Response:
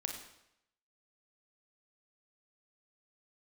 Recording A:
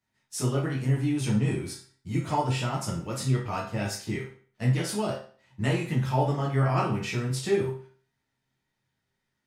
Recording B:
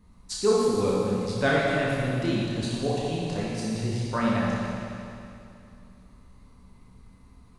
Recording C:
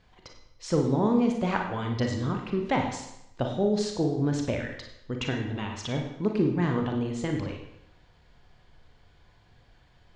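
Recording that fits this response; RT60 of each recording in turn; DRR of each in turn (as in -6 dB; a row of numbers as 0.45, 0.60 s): C; 0.45, 2.6, 0.80 s; -6.0, -6.5, 2.0 dB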